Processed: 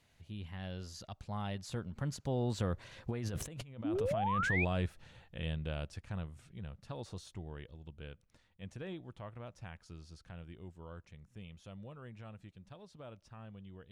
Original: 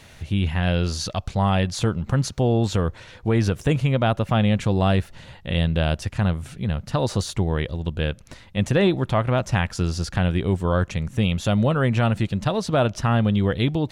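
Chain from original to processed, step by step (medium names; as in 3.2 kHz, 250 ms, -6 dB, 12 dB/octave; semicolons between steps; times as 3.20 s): Doppler pass-by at 3.67 s, 18 m/s, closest 1.7 m; compressor with a negative ratio -40 dBFS, ratio -1; painted sound rise, 3.84–4.65 s, 270–2600 Hz -36 dBFS; trim +2 dB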